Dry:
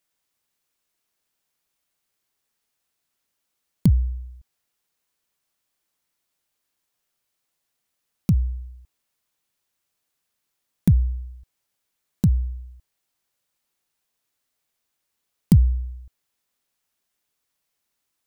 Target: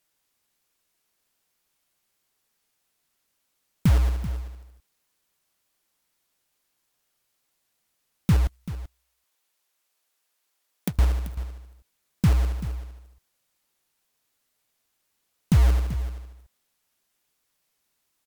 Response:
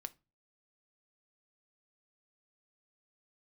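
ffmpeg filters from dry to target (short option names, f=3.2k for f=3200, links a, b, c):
-filter_complex "[0:a]asettb=1/sr,asplit=3[a][b][c];[a]atrim=end=8.474[d];[b]atrim=start=8.47:end=10.99,asetpts=PTS-STARTPTS,afade=t=in:d=0.004:c=qsin,afade=t=out:st=2.516:d=0.004:c=qsin,highpass=420[e];[c]atrim=start=10.986[f];[d][e]acrossfade=d=0.004:c1=hsin:c2=qsin[g];[g][f]acrossfade=d=0.004:c1=qsin:c2=hsin,alimiter=limit=-14.5dB:level=0:latency=1:release=215,acrusher=bits=3:mode=log:mix=0:aa=0.000001,aecho=1:1:386:0.2,volume=3.5dB" -ar 44100 -c:a libvorbis -b:a 128k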